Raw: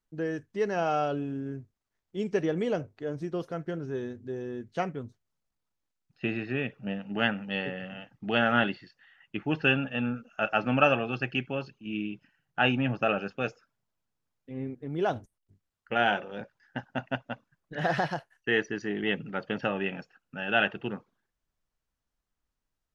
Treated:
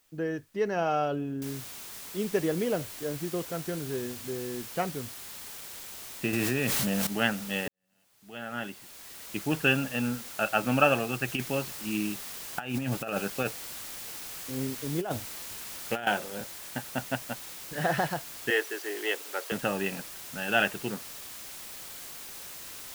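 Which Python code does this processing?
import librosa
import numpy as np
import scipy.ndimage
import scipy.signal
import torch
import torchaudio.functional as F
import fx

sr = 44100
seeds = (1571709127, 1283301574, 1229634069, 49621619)

y = fx.noise_floor_step(x, sr, seeds[0], at_s=1.42, before_db=-68, after_db=-43, tilt_db=0.0)
y = fx.env_flatten(y, sr, amount_pct=100, at=(6.33, 7.07))
y = fx.over_compress(y, sr, threshold_db=-29.0, ratio=-0.5, at=(11.28, 16.07))
y = fx.steep_highpass(y, sr, hz=360.0, slope=36, at=(18.5, 19.52))
y = fx.edit(y, sr, fx.fade_in_span(start_s=7.68, length_s=1.72, curve='qua'), tone=tone)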